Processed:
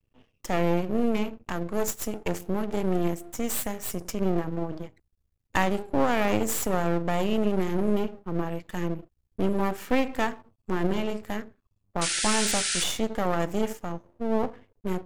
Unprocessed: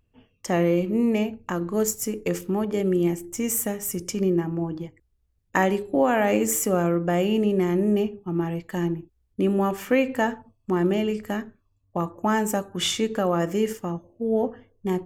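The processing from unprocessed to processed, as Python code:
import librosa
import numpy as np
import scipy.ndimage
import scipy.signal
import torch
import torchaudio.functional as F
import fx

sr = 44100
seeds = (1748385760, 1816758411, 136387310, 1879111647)

y = np.maximum(x, 0.0)
y = fx.spec_paint(y, sr, seeds[0], shape='noise', start_s=12.01, length_s=0.83, low_hz=1300.0, high_hz=10000.0, level_db=-28.0)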